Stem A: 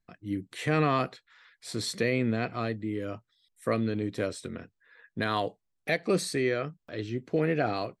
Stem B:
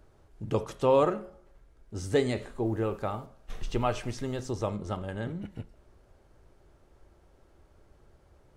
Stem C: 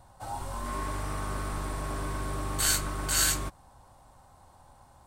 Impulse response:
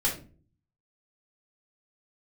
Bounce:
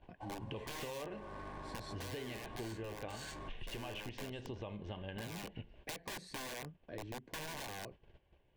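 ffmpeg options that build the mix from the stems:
-filter_complex "[0:a]lowpass=f=1.2k:p=1,aeval=exprs='(mod(21.1*val(0)+1,2)-1)/21.1':c=same,volume=-4dB[a];[1:a]lowpass=f=2.9k:t=q:w=4.2,volume=-0.5dB[b];[2:a]asoftclip=type=tanh:threshold=-24dB,lowshelf=f=150:g=-11.5,adynamicsmooth=sensitivity=5:basefreq=1.7k,volume=-5dB[c];[b][c]amix=inputs=2:normalize=0,agate=range=-13dB:threshold=-56dB:ratio=16:detection=peak,alimiter=limit=-21dB:level=0:latency=1:release=36,volume=0dB[d];[a][d]amix=inputs=2:normalize=0,asuperstop=centerf=1300:order=4:qfactor=5.2,acompressor=threshold=-42dB:ratio=6"

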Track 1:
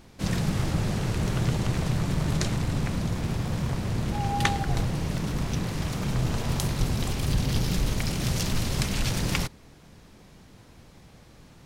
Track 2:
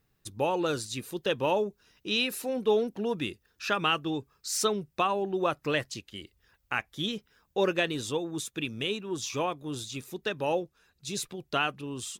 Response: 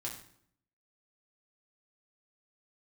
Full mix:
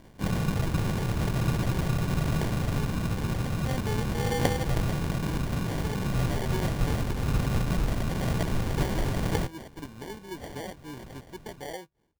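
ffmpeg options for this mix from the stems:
-filter_complex "[0:a]volume=-1dB[a];[1:a]alimiter=limit=-23dB:level=0:latency=1:release=452,dynaudnorm=f=390:g=9:m=10.5dB,adelay=1200,volume=-14.5dB[b];[a][b]amix=inputs=2:normalize=0,acrusher=samples=34:mix=1:aa=0.000001"

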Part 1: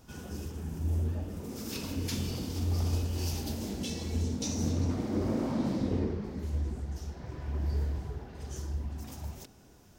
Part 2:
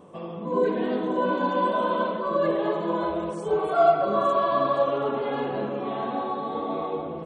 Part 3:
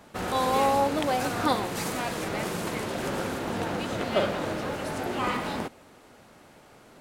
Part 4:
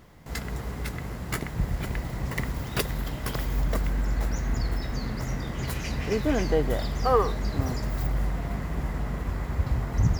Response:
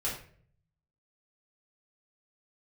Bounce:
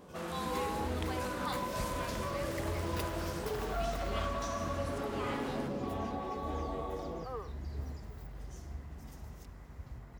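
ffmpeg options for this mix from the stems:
-filter_complex "[0:a]volume=-10.5dB[a];[1:a]acompressor=threshold=-31dB:ratio=6,volume=-5dB[b];[2:a]highpass=f=890:w=0.5412,highpass=f=890:w=1.3066,volume=-10.5dB[c];[3:a]adelay=200,volume=-13.5dB,afade=t=out:st=4.16:d=0.38:silence=0.446684[d];[a][b][c][d]amix=inputs=4:normalize=0"

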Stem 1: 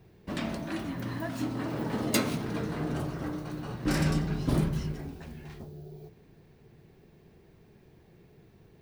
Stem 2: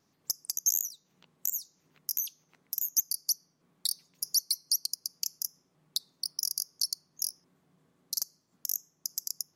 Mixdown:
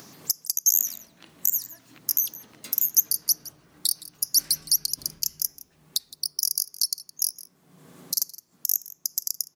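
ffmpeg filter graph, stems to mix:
-filter_complex "[0:a]tiltshelf=f=1.5k:g=-7,adelay=500,volume=-18dB[a];[1:a]highpass=97,highshelf=f=6.4k:g=8,acompressor=mode=upward:threshold=-33dB:ratio=2.5,volume=2dB,asplit=2[b][c];[c]volume=-18.5dB,aecho=0:1:165:1[d];[a][b][d]amix=inputs=3:normalize=0"

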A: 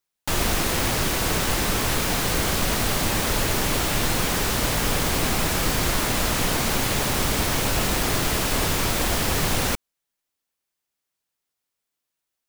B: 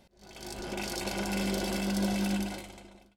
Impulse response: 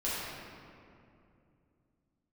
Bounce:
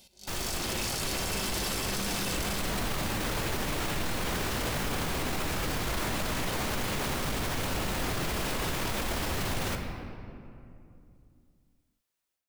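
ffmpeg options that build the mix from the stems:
-filter_complex "[0:a]dynaudnorm=f=560:g=3:m=11.5dB,adynamicequalizer=threshold=0.0355:dfrequency=4300:dqfactor=0.7:tfrequency=4300:tqfactor=0.7:attack=5:release=100:ratio=0.375:range=2:mode=cutabove:tftype=highshelf,volume=-14dB,asplit=2[a][b];[b]volume=-12.5dB[c];[1:a]aexciter=amount=2.3:drive=9.8:freq=2.5k,volume=-5.5dB,asplit=2[d][e];[e]volume=-12.5dB[f];[2:a]atrim=start_sample=2205[g];[c][f]amix=inputs=2:normalize=0[h];[h][g]afir=irnorm=-1:irlink=0[i];[a][d][i]amix=inputs=3:normalize=0,alimiter=limit=-22.5dB:level=0:latency=1:release=12"

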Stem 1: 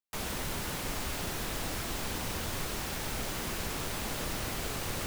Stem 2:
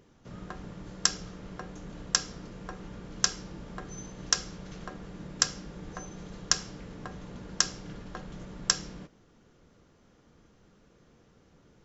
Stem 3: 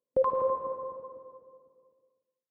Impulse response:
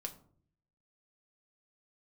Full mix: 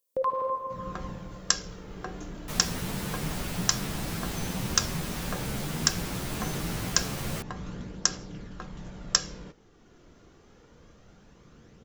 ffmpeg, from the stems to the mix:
-filter_complex "[0:a]equalizer=f=160:w=1.4:g=11.5,asplit=2[a][b];[b]adelay=10.7,afreqshift=1.2[c];[a][c]amix=inputs=2:normalize=1,adelay=2350,volume=2.5dB[d];[1:a]aphaser=in_gain=1:out_gain=1:delay=3.1:decay=0.32:speed=0.26:type=triangular,dynaudnorm=f=290:g=3:m=9dB,adelay=450,volume=-3.5dB[e];[2:a]crystalizer=i=9:c=0,volume=-6.5dB,asplit=2[f][g];[g]volume=-8.5dB[h];[3:a]atrim=start_sample=2205[i];[h][i]afir=irnorm=-1:irlink=0[j];[d][e][f][j]amix=inputs=4:normalize=0"

